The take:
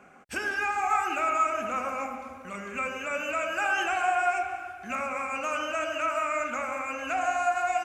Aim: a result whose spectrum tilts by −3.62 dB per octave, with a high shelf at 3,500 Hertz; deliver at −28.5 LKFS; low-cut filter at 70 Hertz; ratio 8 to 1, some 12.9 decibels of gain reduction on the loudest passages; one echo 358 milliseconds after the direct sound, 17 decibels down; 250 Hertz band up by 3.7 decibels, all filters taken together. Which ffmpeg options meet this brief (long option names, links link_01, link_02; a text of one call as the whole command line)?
ffmpeg -i in.wav -af "highpass=70,equalizer=frequency=250:width_type=o:gain=4.5,highshelf=frequency=3500:gain=-4,acompressor=threshold=-35dB:ratio=8,aecho=1:1:358:0.141,volume=9.5dB" out.wav